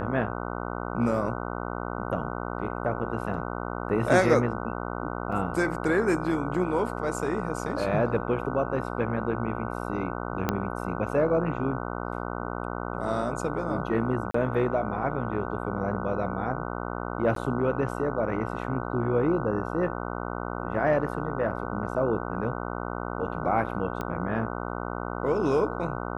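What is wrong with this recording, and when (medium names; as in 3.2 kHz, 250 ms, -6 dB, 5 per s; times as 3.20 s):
buzz 60 Hz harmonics 25 -33 dBFS
5.32 s: dropout 4.4 ms
10.49 s: pop -10 dBFS
14.31–14.34 s: dropout 34 ms
17.35–17.36 s: dropout 13 ms
24.01 s: pop -19 dBFS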